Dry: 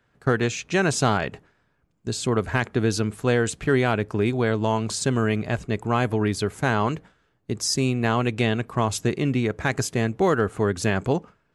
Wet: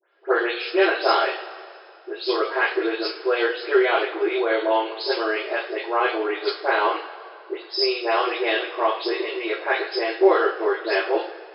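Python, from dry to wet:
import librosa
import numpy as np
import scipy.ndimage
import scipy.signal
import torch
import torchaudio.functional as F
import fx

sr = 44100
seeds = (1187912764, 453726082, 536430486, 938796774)

y = fx.spec_delay(x, sr, highs='late', ms=168)
y = fx.brickwall_bandpass(y, sr, low_hz=330.0, high_hz=5300.0)
y = fx.rev_double_slope(y, sr, seeds[0], early_s=0.37, late_s=2.5, knee_db=-18, drr_db=-2.5)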